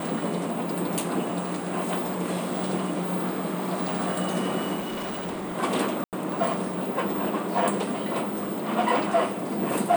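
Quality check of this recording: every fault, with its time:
4.79–5.56 clipped -28.5 dBFS
6.04–6.13 gap 88 ms

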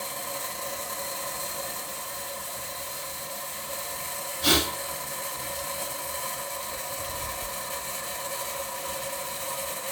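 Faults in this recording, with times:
1.8–3.71 clipped -31.5 dBFS

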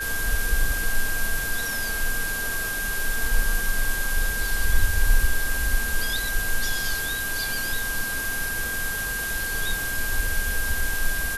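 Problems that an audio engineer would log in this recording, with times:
tone 1600 Hz -28 dBFS

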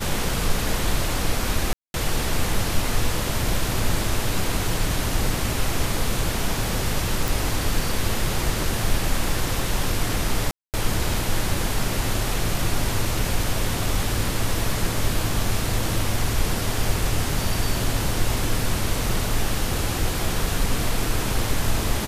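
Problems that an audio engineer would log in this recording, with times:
1.73–1.94 gap 0.211 s
7.28 pop
10.51–10.74 gap 0.228 s

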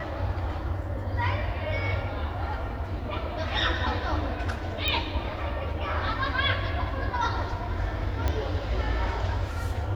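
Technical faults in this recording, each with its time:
4.88 pop -12 dBFS
8.28 pop -14 dBFS

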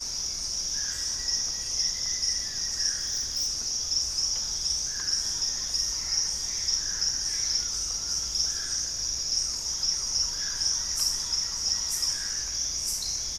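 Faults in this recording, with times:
2.97–3.48 clipped -24.5 dBFS

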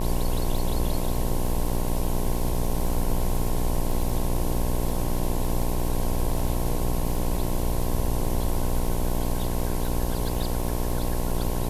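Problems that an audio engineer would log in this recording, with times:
buzz 60 Hz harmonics 18 -29 dBFS
crackle 49/s -31 dBFS

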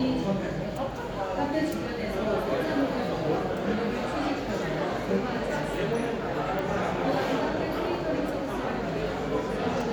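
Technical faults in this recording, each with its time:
6.59 pop

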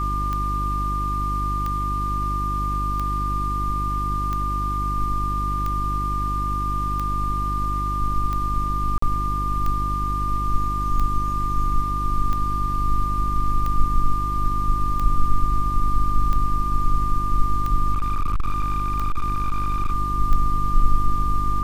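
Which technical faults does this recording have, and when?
hum 50 Hz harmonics 7 -26 dBFS
tick 45 rpm -15 dBFS
tone 1200 Hz -24 dBFS
8.98–9.02 gap 44 ms
17.94–19.95 clipped -17 dBFS

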